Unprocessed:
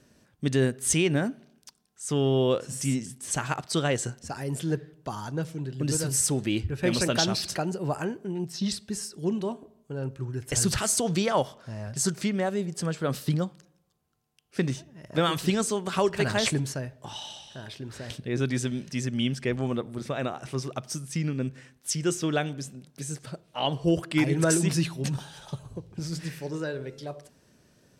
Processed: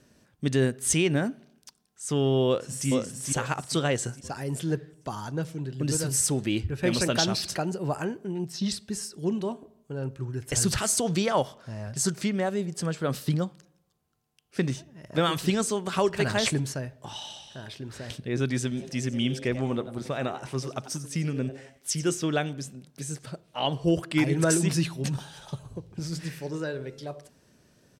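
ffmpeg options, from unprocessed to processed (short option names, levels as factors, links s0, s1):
-filter_complex "[0:a]asplit=2[s0][s1];[s1]afade=t=in:st=2.47:d=0.01,afade=t=out:st=2.88:d=0.01,aecho=0:1:440|880|1320|1760|2200:0.668344|0.267338|0.106935|0.042774|0.0171096[s2];[s0][s2]amix=inputs=2:normalize=0,asplit=3[s3][s4][s5];[s3]afade=t=out:st=18.76:d=0.02[s6];[s4]asplit=4[s7][s8][s9][s10];[s8]adelay=91,afreqshift=140,volume=0.2[s11];[s9]adelay=182,afreqshift=280,volume=0.0716[s12];[s10]adelay=273,afreqshift=420,volume=0.026[s13];[s7][s11][s12][s13]amix=inputs=4:normalize=0,afade=t=in:st=18.76:d=0.02,afade=t=out:st=22.13:d=0.02[s14];[s5]afade=t=in:st=22.13:d=0.02[s15];[s6][s14][s15]amix=inputs=3:normalize=0"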